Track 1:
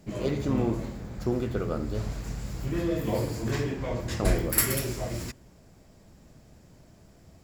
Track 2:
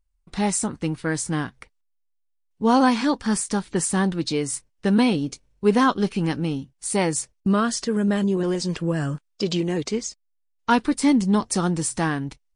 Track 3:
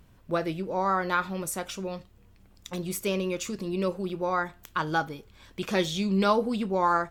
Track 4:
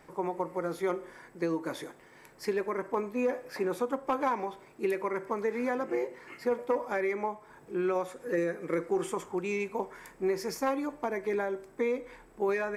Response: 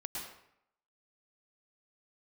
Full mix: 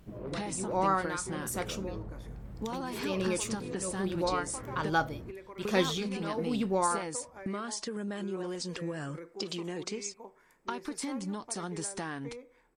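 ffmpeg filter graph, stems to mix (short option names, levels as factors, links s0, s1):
-filter_complex "[0:a]lowpass=1100,asoftclip=type=tanh:threshold=0.0631,volume=0.376[s0];[1:a]lowshelf=f=230:g=-10,acompressor=threshold=0.0708:ratio=6,volume=0.841,asplit=3[s1][s2][s3];[s1]atrim=end=4.9,asetpts=PTS-STARTPTS,afade=t=out:st=4.896:d=0.004:c=hsin[s4];[s2]atrim=start=4.9:end=5.65,asetpts=PTS-STARTPTS,volume=0[s5];[s3]atrim=start=5.65,asetpts=PTS-STARTPTS,afade=t=in:d=0.004:c=hsin[s6];[s4][s5][s6]concat=n=3:v=0:a=1[s7];[2:a]tremolo=f=1.2:d=0.83,volume=0.891[s8];[3:a]adelay=450,volume=0.168[s9];[s0][s7]amix=inputs=2:normalize=0,acompressor=threshold=0.02:ratio=6,volume=1[s10];[s8][s9][s10]amix=inputs=3:normalize=0"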